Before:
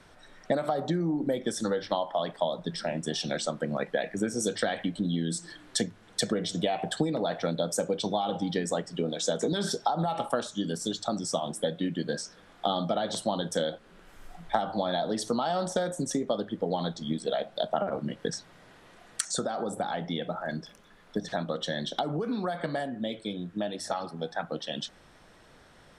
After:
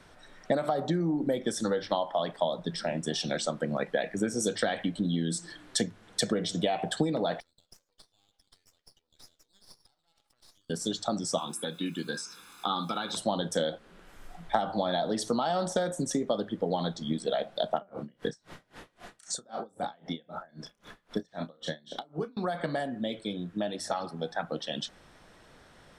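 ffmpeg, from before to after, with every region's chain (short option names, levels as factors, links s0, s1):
-filter_complex "[0:a]asettb=1/sr,asplit=3[s0][s1][s2];[s0]atrim=end=7.404[s3];[s1]atrim=start=7.4:end=10.7,asetpts=PTS-STARTPTS,afade=t=in:d=0.004:c=qsin,afade=t=out:st=3.296:d=0.004:c=qsin,acompressor=threshold=0.0141:ratio=6:attack=3.2:release=140:knee=1:detection=peak,bandpass=f=4800:t=q:w=6.9,aeval=exprs='max(val(0),0)':c=same[s4];[s2]atrim=start=10.696[s5];[s3][s4]acrossfade=d=0.004:c1=hsin:c2=qsin[s6];[s6][s5]acrossfade=d=0.004:c1=qsin:c2=hsin,asettb=1/sr,asplit=3[s7][s8][s9];[s7]atrim=end=11.384[s10];[s8]atrim=start=11.38:end=13.17,asetpts=PTS-STARTPTS,afade=t=in:d=0.004:c=qsin,afade=t=out:st=1.786:d=0.004:c=qsin,aecho=1:1:0.8:0.82,atrim=end_sample=78939,acrossover=split=2900[s11][s12];[s12]acompressor=threshold=0.00316:ratio=4:attack=1:release=60[s13];[s11][s13]amix=inputs=2:normalize=0,aemphasis=mode=production:type=riaa[s14];[s9]atrim=start=13.166[s15];[s10][s14]acrossfade=d=0.004:c1=hsin:c2=qsin[s16];[s16][s15]acrossfade=d=0.004:c1=qsin:c2=hsin,asettb=1/sr,asplit=3[s17][s18][s19];[s17]atrim=end=17.744[s20];[s18]atrim=start=17.74:end=22.37,asetpts=PTS-STARTPTS,afade=t=in:d=0.004:c=qsin,afade=t=out:st=4.626:d=0.004:c=qsin,acompressor=mode=upward:threshold=0.02:ratio=2.5:attack=3.2:release=140:knee=2.83:detection=peak,asplit=2[s21][s22];[s22]adelay=32,volume=0.422[s23];[s21][s23]amix=inputs=2:normalize=0,atrim=end_sample=204183,aeval=exprs='val(0)*pow(10,-31*(0.5-0.5*cos(2*PI*3.8*n/s))/20)':c=same[s24];[s19]atrim=start=22.366[s25];[s20][s24]acrossfade=d=0.004:c1=hsin:c2=qsin[s26];[s26][s25]acrossfade=d=0.004:c1=qsin:c2=hsin"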